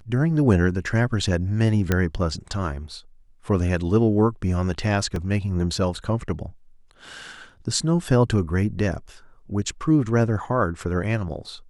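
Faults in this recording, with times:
1.92 s: pop -7 dBFS
5.16 s: dropout 2.3 ms

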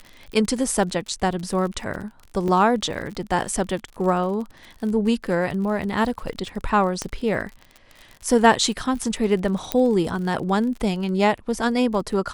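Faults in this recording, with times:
crackle 45 per s -31 dBFS
2.48 s: dropout 2.5 ms
7.02 s: pop -12 dBFS
9.72 s: pop -5 dBFS

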